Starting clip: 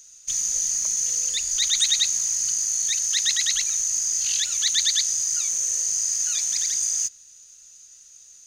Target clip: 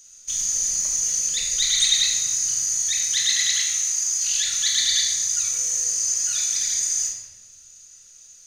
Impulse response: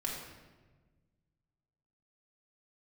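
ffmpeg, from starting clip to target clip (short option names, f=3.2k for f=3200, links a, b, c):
-filter_complex "[0:a]asplit=3[a][b][c];[a]afade=t=out:st=3.51:d=0.02[d];[b]highpass=f=650:w=0.5412,highpass=f=650:w=1.3066,afade=t=in:st=3.51:d=0.02,afade=t=out:st=4.21:d=0.02[e];[c]afade=t=in:st=4.21:d=0.02[f];[d][e][f]amix=inputs=3:normalize=0[g];[1:a]atrim=start_sample=2205[h];[g][h]afir=irnorm=-1:irlink=0"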